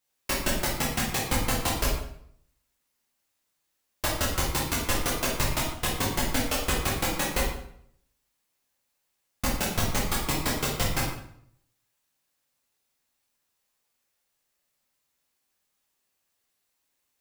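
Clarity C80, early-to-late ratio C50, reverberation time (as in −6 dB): 6.5 dB, 2.5 dB, 0.65 s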